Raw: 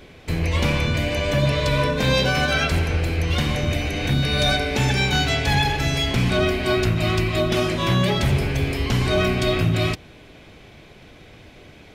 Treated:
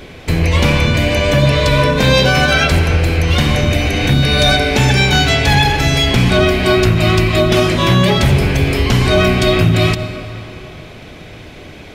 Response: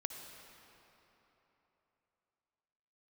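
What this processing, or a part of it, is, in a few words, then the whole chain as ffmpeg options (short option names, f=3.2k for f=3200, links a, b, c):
ducked reverb: -filter_complex "[0:a]asplit=3[a][b][c];[1:a]atrim=start_sample=2205[d];[b][d]afir=irnorm=-1:irlink=0[e];[c]apad=whole_len=526759[f];[e][f]sidechaincompress=threshold=-26dB:ratio=8:attack=40:release=134,volume=-1.5dB[g];[a][g]amix=inputs=2:normalize=0,volume=6dB"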